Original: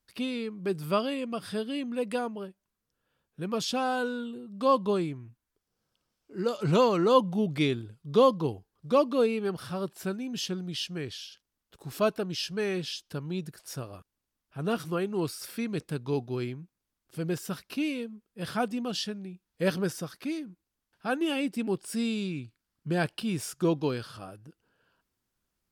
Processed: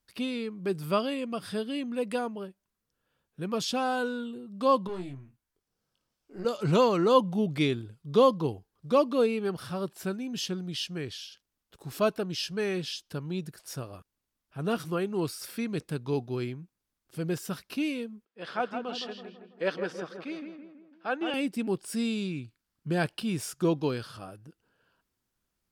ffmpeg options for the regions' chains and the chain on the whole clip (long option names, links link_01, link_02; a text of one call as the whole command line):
ffmpeg -i in.wav -filter_complex "[0:a]asettb=1/sr,asplit=3[link_01][link_02][link_03];[link_01]atrim=end=4.874[link_04];[link_02]atrim=start=4.87:end=6.45,asetpts=PTS-STARTPTS,afade=type=in:duration=0.004:curve=qsin,afade=type=out:start_time=1.576:duration=0.004:curve=qsin,acompressor=threshold=-37dB:ratio=2:attack=3.2:release=140:knee=1:detection=peak,aeval=exprs='(tanh(35.5*val(0)+0.55)-tanh(0.55))/35.5':channel_layout=same,asplit=2[link_05][link_06];[link_06]adelay=22,volume=-6dB[link_07];[link_05][link_07]amix=inputs=2:normalize=0,atrim=end_sample=69678[link_08];[link_03]atrim=start=6.446[link_09];[link_04][link_08]acrossfade=duration=0.004:curve1=hsin:curve2=qsin[link_10];[link_10][link_09]acrossfade=duration=0.004:curve1=qsin:curve2=hsin,asettb=1/sr,asplit=3[link_11][link_12][link_13];[link_11]atrim=end=18.254[link_14];[link_12]atrim=start=18.25:end=21.34,asetpts=PTS-STARTPTS,afade=type=in:duration=0.004:curve=qsin,afade=type=out:start_time=3.086:duration=0.004:curve=qsin,highpass=380,lowpass=3600,asplit=2[link_15][link_16];[link_16]adelay=164,lowpass=frequency=1900:poles=1,volume=-6dB,asplit=2[link_17][link_18];[link_18]adelay=164,lowpass=frequency=1900:poles=1,volume=0.51,asplit=2[link_19][link_20];[link_20]adelay=164,lowpass=frequency=1900:poles=1,volume=0.51,asplit=2[link_21][link_22];[link_22]adelay=164,lowpass=frequency=1900:poles=1,volume=0.51,asplit=2[link_23][link_24];[link_24]adelay=164,lowpass=frequency=1900:poles=1,volume=0.51,asplit=2[link_25][link_26];[link_26]adelay=164,lowpass=frequency=1900:poles=1,volume=0.51[link_27];[link_15][link_17][link_19][link_21][link_23][link_25][link_27]amix=inputs=7:normalize=0,atrim=end_sample=136269[link_28];[link_13]atrim=start=21.336[link_29];[link_14][link_28]acrossfade=duration=0.004:curve1=hsin:curve2=qsin[link_30];[link_30][link_29]acrossfade=duration=0.004:curve1=qsin:curve2=hsin" out.wav